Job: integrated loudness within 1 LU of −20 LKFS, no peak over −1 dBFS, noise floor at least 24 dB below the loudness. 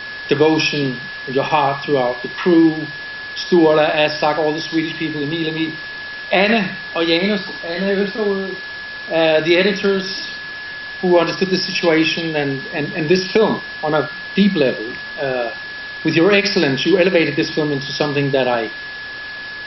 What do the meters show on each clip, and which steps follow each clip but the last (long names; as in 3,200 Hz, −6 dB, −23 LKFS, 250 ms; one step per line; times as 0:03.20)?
interfering tone 1,700 Hz; level of the tone −28 dBFS; background noise floor −30 dBFS; target noise floor −42 dBFS; integrated loudness −17.5 LKFS; sample peak −1.0 dBFS; target loudness −20.0 LKFS
→ notch filter 1,700 Hz, Q 30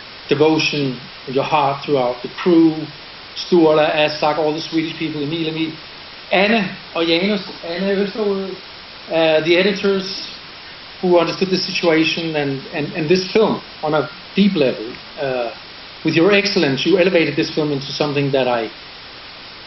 interfering tone none found; background noise floor −36 dBFS; target noise floor −42 dBFS
→ broadband denoise 6 dB, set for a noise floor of −36 dBFS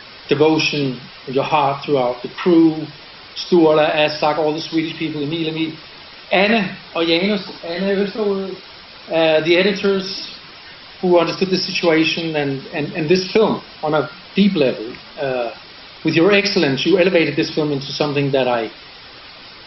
background noise floor −39 dBFS; target noise floor −42 dBFS
→ broadband denoise 6 dB, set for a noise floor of −39 dBFS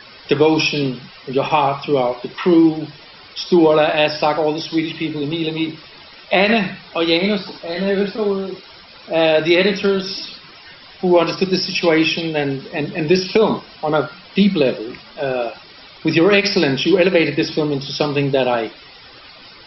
background noise floor −42 dBFS; integrated loudness −17.5 LKFS; sample peak −1.5 dBFS; target loudness −20.0 LKFS
→ level −2.5 dB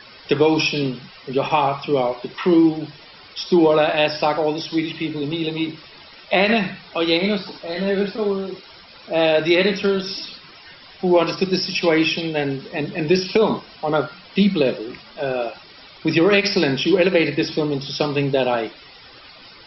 integrated loudness −20.0 LKFS; sample peak −4.0 dBFS; background noise floor −44 dBFS